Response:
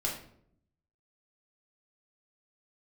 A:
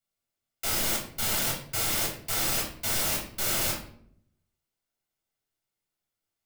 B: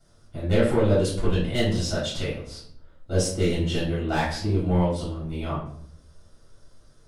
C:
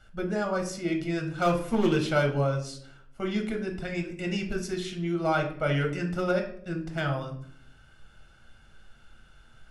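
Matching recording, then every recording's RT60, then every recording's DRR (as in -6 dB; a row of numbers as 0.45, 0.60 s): A; 0.65, 0.65, 0.65 s; -3.0, -9.5, 3.0 dB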